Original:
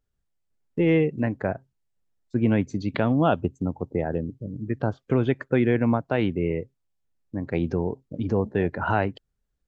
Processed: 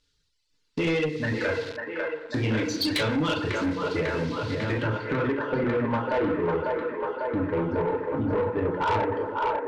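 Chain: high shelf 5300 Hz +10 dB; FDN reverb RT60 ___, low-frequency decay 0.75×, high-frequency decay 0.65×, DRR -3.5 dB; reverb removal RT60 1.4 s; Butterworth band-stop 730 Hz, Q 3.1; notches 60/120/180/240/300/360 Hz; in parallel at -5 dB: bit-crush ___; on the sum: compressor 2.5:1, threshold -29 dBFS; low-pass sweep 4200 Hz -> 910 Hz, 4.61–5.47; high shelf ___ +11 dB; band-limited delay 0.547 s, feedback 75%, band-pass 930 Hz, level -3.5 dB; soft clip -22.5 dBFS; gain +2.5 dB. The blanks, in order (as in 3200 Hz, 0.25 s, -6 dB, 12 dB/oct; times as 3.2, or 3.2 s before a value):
1.2 s, 7-bit, 2100 Hz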